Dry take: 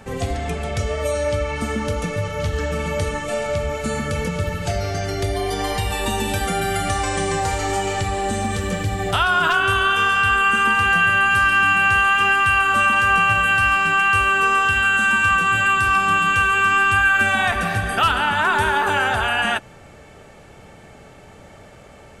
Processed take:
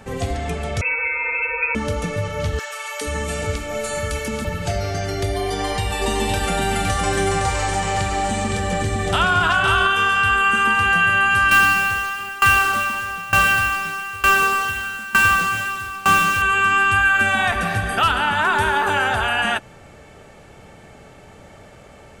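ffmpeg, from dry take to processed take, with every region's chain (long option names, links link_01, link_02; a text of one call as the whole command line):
ffmpeg -i in.wav -filter_complex "[0:a]asettb=1/sr,asplit=3[link_01][link_02][link_03];[link_01]atrim=end=0.814[link_04];[link_02]atrim=start=0.81:end=1.75,asetpts=PTS-STARTPTS,afade=type=in:duration=0.004:curve=qsin,afade=type=out:start_time=0.936:duration=0.004:curve=qsin,highpass=46,aecho=1:1:4.1:0.85,atrim=end_sample=41454,lowpass=frequency=2300:width_type=q:width=0.5098,lowpass=frequency=2300:width_type=q:width=0.6013,lowpass=frequency=2300:width_type=q:width=0.9,lowpass=frequency=2300:width_type=q:width=2.563,afreqshift=-2700[link_05];[link_03]atrim=start=1.746[link_06];[link_04][link_05]acrossfade=duration=0.004:curve1=hsin:curve2=qsin[link_07];[link_07][link_06]acrossfade=duration=0.004:curve1=qsin:curve2=hsin,asettb=1/sr,asplit=3[link_08][link_09][link_10];[link_08]atrim=end=2.594[link_11];[link_09]atrim=start=2.59:end=4.45,asetpts=PTS-STARTPTS,afade=type=in:duration=0.004:curve=qsin,afade=type=out:start_time=1.856:duration=0.004:curve=qsin,highshelf=frequency=6600:gain=7.5,asoftclip=type=hard:threshold=-12.5dB,acrossover=split=160|730[link_12][link_13][link_14];[link_13]adelay=420[link_15];[link_12]adelay=470[link_16];[link_16][link_15][link_14]amix=inputs=3:normalize=0,atrim=end_sample=82026[link_17];[link_10]atrim=start=4.446[link_18];[link_11][link_17]acrossfade=duration=0.004:curve1=hsin:curve2=qsin[link_19];[link_19][link_18]acrossfade=duration=0.004:curve1=qsin:curve2=hsin,asettb=1/sr,asplit=3[link_20][link_21][link_22];[link_20]atrim=end=5.504[link_23];[link_21]atrim=start=5.5:end=9.87,asetpts=PTS-STARTPTS,afade=type=in:duration=0.004:curve=qsin,afade=type=out:start_time=4.366:duration=0.004:curve=qsin,lowpass=frequency=11000:width=0.5412,lowpass=frequency=11000:width=1.3066,aecho=1:1:513:0.631,atrim=end_sample=192717[link_24];[link_22]atrim=start=9.866[link_25];[link_23][link_24]acrossfade=duration=0.004:curve1=hsin:curve2=qsin[link_26];[link_26][link_25]acrossfade=duration=0.004:curve1=qsin:curve2=hsin,asettb=1/sr,asplit=3[link_27][link_28][link_29];[link_27]atrim=end=11.514[link_30];[link_28]atrim=start=11.51:end=16.42,asetpts=PTS-STARTPTS,afade=type=in:duration=0.004:curve=qsin,afade=type=out:start_time=4.906:duration=0.004:curve=qsin,acrusher=bits=3:mix=0:aa=0.5,acontrast=34,aeval=exprs='val(0)*pow(10,-21*if(lt(mod(1.1*n/s,1),2*abs(1.1)/1000),1-mod(1.1*n/s,1)/(2*abs(1.1)/1000),(mod(1.1*n/s,1)-2*abs(1.1)/1000)/(1-2*abs(1.1)/1000))/20)':channel_layout=same[link_31];[link_29]atrim=start=16.416[link_32];[link_30][link_31]acrossfade=duration=0.004:curve1=hsin:curve2=qsin[link_33];[link_33][link_32]acrossfade=duration=0.004:curve1=qsin:curve2=hsin" out.wav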